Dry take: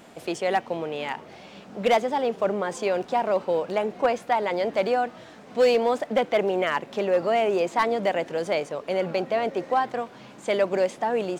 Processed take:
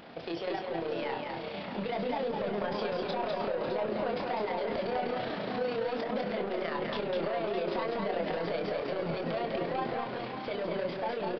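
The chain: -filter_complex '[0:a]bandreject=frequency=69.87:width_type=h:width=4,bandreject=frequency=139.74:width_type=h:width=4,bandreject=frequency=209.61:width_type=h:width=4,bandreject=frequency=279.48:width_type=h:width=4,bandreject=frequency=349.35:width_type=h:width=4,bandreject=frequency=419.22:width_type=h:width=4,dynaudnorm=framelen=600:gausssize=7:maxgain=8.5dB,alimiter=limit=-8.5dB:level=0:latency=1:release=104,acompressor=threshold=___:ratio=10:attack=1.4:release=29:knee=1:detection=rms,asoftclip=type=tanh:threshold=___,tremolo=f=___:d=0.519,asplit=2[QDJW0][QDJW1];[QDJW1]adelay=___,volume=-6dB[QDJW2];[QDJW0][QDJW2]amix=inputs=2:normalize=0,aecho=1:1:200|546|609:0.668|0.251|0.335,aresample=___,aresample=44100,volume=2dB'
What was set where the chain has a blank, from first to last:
-28dB, -30.5dB, 29, 24, 11025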